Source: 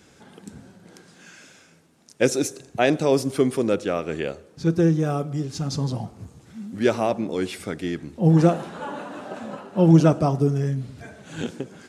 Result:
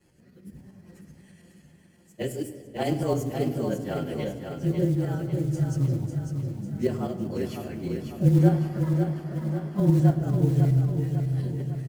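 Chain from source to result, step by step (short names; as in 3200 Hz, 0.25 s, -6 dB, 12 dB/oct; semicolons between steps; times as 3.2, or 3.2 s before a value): inharmonic rescaling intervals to 109%; low shelf 220 Hz +8 dB; notch 3700 Hz, Q 6.8; in parallel at +0.5 dB: limiter -12 dBFS, peak gain reduction 10 dB; on the sum: tremolo saw up 9.9 Hz, depth 55%; rotary speaker horn 0.9 Hz; short-mantissa float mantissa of 4-bit; on a send: feedback echo 0.549 s, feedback 51%, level -6 dB; on the sum: shoebox room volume 3600 m³, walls mixed, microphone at 0.89 m; gain -9 dB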